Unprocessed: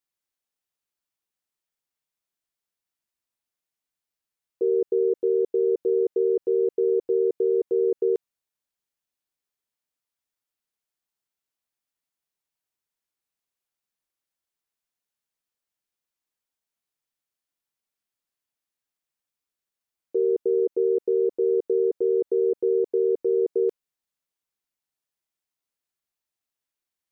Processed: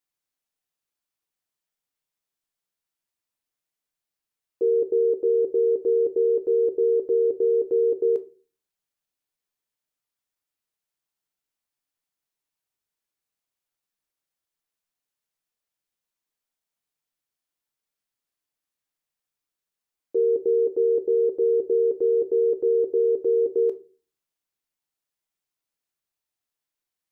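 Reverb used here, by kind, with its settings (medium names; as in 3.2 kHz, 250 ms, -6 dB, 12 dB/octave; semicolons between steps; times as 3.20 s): simulated room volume 180 m³, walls furnished, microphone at 0.45 m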